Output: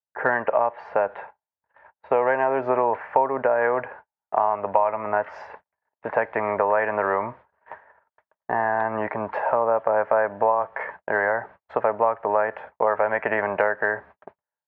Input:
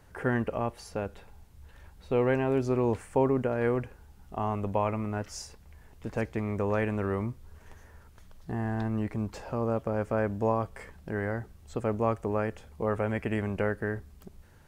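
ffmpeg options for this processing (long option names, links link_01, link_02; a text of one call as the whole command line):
ffmpeg -i in.wav -filter_complex "[0:a]acrossover=split=470[link_01][link_02];[link_02]dynaudnorm=framelen=160:gausssize=3:maxgain=15dB[link_03];[link_01][link_03]amix=inputs=2:normalize=0,agate=range=-47dB:threshold=-41dB:ratio=16:detection=peak,highpass=170,equalizer=frequency=220:width_type=q:width=4:gain=-3,equalizer=frequency=340:width_type=q:width=4:gain=-4,equalizer=frequency=620:width_type=q:width=4:gain=8,equalizer=frequency=920:width_type=q:width=4:gain=9,equalizer=frequency=1700:width_type=q:width=4:gain=5,lowpass=frequency=2100:width=0.5412,lowpass=frequency=2100:width=1.3066,acompressor=threshold=-18dB:ratio=4" out.wav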